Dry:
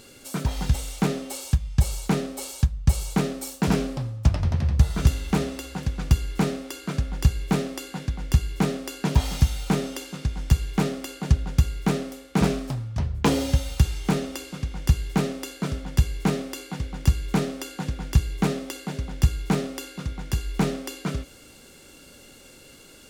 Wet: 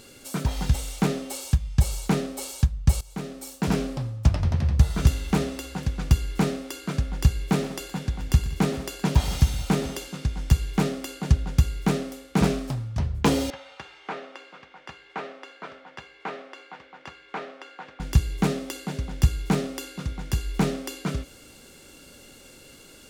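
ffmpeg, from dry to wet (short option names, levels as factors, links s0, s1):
-filter_complex "[0:a]asettb=1/sr,asplit=3[s0][s1][s2];[s0]atrim=end=7.374[s3];[s1]atrim=start=7.37:end=10.08,asetpts=PTS-STARTPTS,afade=t=in:d=0.004:c=qsin,afade=t=out:st=2.706:d=0.004:c=qsin,aecho=1:1:119|188|432:0.178|0.112|0.106,atrim=end_sample=119511[s4];[s2]atrim=start=10.076[s5];[s3][s4]acrossfade=d=0.004:c1=hsin:c2=qsin[s6];[s6][s5]acrossfade=d=0.004:c1=qsin:c2=hsin,asettb=1/sr,asplit=3[s7][s8][s9];[s7]atrim=end=13.504[s10];[s8]atrim=start=13.5:end=18,asetpts=PTS-STARTPTS,afade=t=in:d=0.004:c=qsin,afade=t=out:st=4.496:d=0.004:c=qsin,highpass=710,lowpass=2100[s11];[s9]atrim=start=17.996[s12];[s10][s11]acrossfade=d=0.004:c1=hsin:c2=qsin[s13];[s13][s12]acrossfade=d=0.004:c1=qsin:c2=hsin,asplit=2[s14][s15];[s14]atrim=end=3.01,asetpts=PTS-STARTPTS,afade=t=out:st=3.006:d=0.004:c=hsin:silence=0.112202[s16];[s15]atrim=start=3.01,asetpts=PTS-STARTPTS,afade=t=in:d=1.28:c=qsin:silence=0.112202[s17];[s16][s17]concat=n=2:v=0:a=1"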